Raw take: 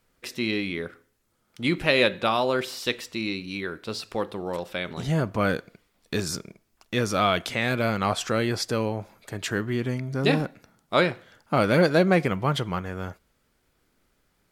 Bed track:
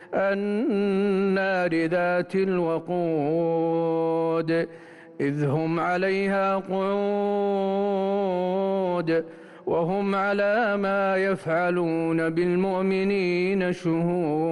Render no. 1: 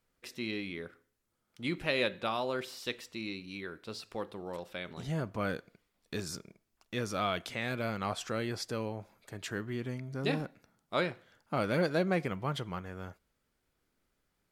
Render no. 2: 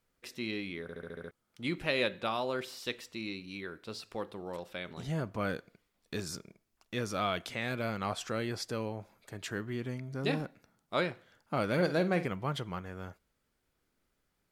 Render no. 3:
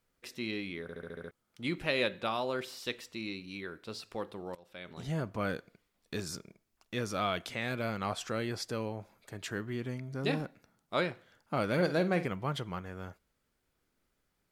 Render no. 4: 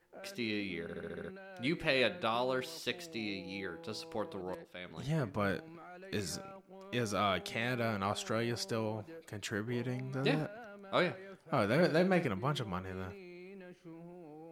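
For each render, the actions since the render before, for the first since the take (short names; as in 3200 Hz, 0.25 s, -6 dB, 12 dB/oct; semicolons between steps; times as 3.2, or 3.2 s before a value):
gain -10 dB
0.82 stutter in place 0.07 s, 7 plays; 11.73–12.26 flutter echo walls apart 8.6 m, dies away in 0.25 s
4.55–5.08 fade in, from -21.5 dB
add bed track -27 dB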